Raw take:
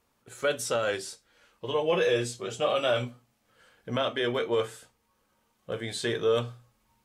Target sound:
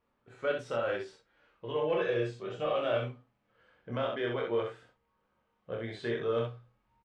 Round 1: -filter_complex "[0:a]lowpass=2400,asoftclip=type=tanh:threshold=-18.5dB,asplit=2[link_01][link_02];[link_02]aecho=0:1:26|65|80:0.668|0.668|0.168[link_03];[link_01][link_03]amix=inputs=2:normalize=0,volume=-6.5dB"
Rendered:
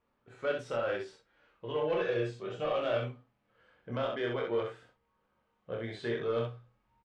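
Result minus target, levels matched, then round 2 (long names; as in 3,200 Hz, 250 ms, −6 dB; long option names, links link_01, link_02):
soft clipping: distortion +11 dB
-filter_complex "[0:a]lowpass=2400,asoftclip=type=tanh:threshold=-12dB,asplit=2[link_01][link_02];[link_02]aecho=0:1:26|65|80:0.668|0.668|0.168[link_03];[link_01][link_03]amix=inputs=2:normalize=0,volume=-6.5dB"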